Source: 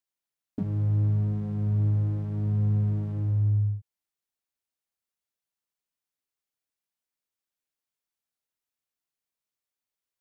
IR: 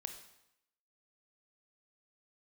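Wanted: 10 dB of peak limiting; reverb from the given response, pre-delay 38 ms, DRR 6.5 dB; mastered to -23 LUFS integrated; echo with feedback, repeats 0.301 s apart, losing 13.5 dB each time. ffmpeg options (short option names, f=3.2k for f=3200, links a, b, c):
-filter_complex "[0:a]alimiter=level_in=3.5dB:limit=-24dB:level=0:latency=1,volume=-3.5dB,aecho=1:1:301|602:0.211|0.0444,asplit=2[a][b];[1:a]atrim=start_sample=2205,adelay=38[c];[b][c]afir=irnorm=-1:irlink=0,volume=-4dB[d];[a][d]amix=inputs=2:normalize=0,volume=9dB"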